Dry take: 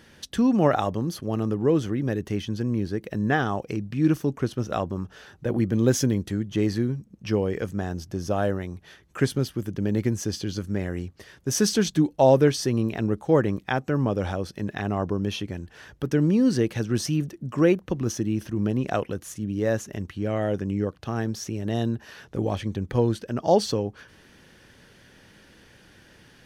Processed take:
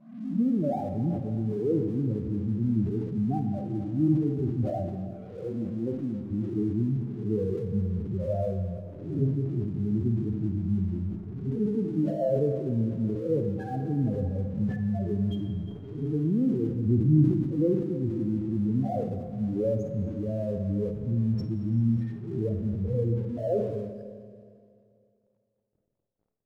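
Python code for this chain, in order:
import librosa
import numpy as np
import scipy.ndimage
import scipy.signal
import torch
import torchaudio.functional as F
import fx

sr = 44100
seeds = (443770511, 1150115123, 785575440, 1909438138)

y = fx.spec_swells(x, sr, rise_s=0.74)
y = fx.low_shelf(y, sr, hz=440.0, db=5.0)
y = fx.rider(y, sr, range_db=4, speed_s=0.5)
y = fx.leveller(y, sr, passes=3, at=(16.86, 17.43))
y = fx.spec_topn(y, sr, count=4)
y = fx.bandpass_q(y, sr, hz=380.0, q=0.93, at=(4.87, 6.31))
y = np.sign(y) * np.maximum(np.abs(y) - 10.0 ** (-50.5 / 20.0), 0.0)
y = fx.room_flutter(y, sr, wall_m=9.0, rt60_s=0.27)
y = fx.rev_freeverb(y, sr, rt60_s=2.4, hf_ratio=1.0, predelay_ms=0, drr_db=7.0)
y = fx.sustainer(y, sr, db_per_s=60.0)
y = F.gain(torch.from_numpy(y), -6.0).numpy()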